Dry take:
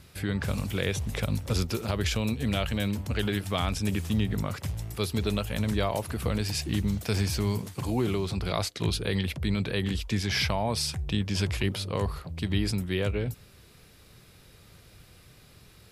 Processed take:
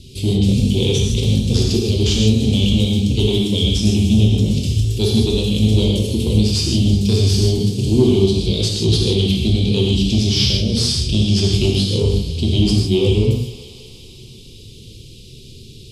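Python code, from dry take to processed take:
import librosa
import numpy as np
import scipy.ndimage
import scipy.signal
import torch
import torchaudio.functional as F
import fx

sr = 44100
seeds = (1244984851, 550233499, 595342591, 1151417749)

p1 = scipy.signal.sosfilt(scipy.signal.ellip(3, 1.0, 40, [430.0, 3000.0], 'bandstop', fs=sr, output='sos'), x)
p2 = fx.high_shelf(p1, sr, hz=6700.0, db=8.0)
p3 = fx.hum_notches(p2, sr, base_hz=60, count=7)
p4 = fx.rider(p3, sr, range_db=10, speed_s=0.5)
p5 = p3 + F.gain(torch.from_numpy(p4), -0.5).numpy()
p6 = 10.0 ** (-14.5 / 20.0) * np.tanh(p5 / 10.0 ** (-14.5 / 20.0))
p7 = fx.air_absorb(p6, sr, metres=90.0)
p8 = fx.echo_thinned(p7, sr, ms=184, feedback_pct=77, hz=420.0, wet_db=-14.5)
p9 = fx.rev_gated(p8, sr, seeds[0], gate_ms=180, shape='flat', drr_db=-2.0)
y = F.gain(torch.from_numpy(p9), 6.5).numpy()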